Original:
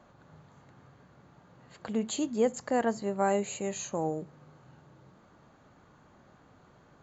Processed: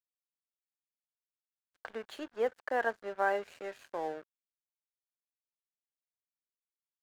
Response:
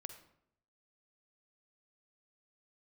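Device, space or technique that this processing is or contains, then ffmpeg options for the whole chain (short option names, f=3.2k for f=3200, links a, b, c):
pocket radio on a weak battery: -filter_complex "[0:a]highpass=380,lowpass=3.7k,acrossover=split=290 5400:gain=0.251 1 0.158[a][b][c];[a][b][c]amix=inputs=3:normalize=0,aeval=exprs='sgn(val(0))*max(abs(val(0))-0.00398,0)':c=same,equalizer=f=1.6k:t=o:w=0.37:g=9,volume=-1.5dB"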